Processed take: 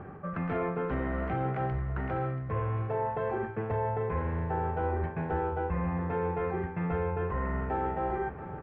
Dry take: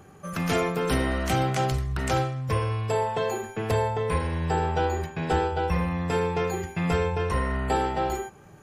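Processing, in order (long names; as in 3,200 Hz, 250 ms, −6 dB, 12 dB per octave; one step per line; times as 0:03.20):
low-pass filter 1,900 Hz 24 dB per octave
reversed playback
downward compressor 4 to 1, threshold −38 dBFS, peak gain reduction 15 dB
reversed playback
repeating echo 682 ms, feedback 48%, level −13.5 dB
level +7 dB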